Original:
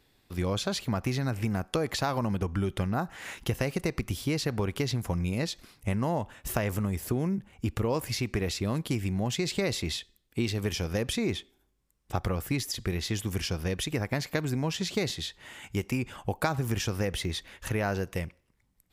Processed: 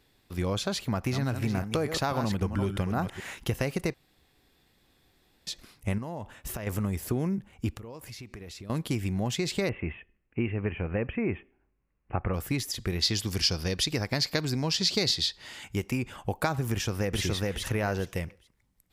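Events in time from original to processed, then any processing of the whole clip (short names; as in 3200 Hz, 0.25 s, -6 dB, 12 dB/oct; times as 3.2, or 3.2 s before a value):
0.79–3.34 reverse delay 0.268 s, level -8 dB
3.94–5.47 room tone
5.98–6.67 compressor, threshold -32 dBFS
7.72–8.7 compressor 4:1, threshold -42 dBFS
9.69–12.34 steep low-pass 2800 Hz 96 dB/oct
13.02–15.64 bell 4700 Hz +14 dB 0.63 oct
16.71–17.21 echo throw 0.42 s, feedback 20%, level -1 dB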